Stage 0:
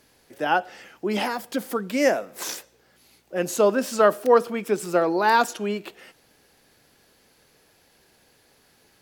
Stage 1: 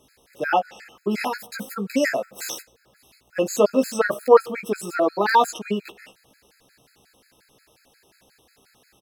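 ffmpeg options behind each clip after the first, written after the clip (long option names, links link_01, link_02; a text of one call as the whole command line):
ffmpeg -i in.wav -filter_complex "[0:a]asplit=2[link_01][link_02];[link_02]adelay=15,volume=-4dB[link_03];[link_01][link_03]amix=inputs=2:normalize=0,afftfilt=real='re*gt(sin(2*PI*5.6*pts/sr)*(1-2*mod(floor(b*sr/1024/1300),2)),0)':imag='im*gt(sin(2*PI*5.6*pts/sr)*(1-2*mod(floor(b*sr/1024/1300),2)),0)':win_size=1024:overlap=0.75,volume=2dB" out.wav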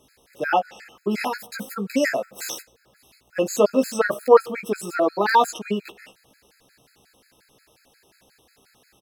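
ffmpeg -i in.wav -af anull out.wav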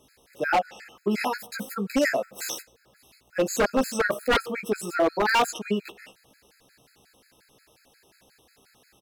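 ffmpeg -i in.wav -af "aeval=exprs='0.211*(abs(mod(val(0)/0.211+3,4)-2)-1)':channel_layout=same,volume=-1dB" out.wav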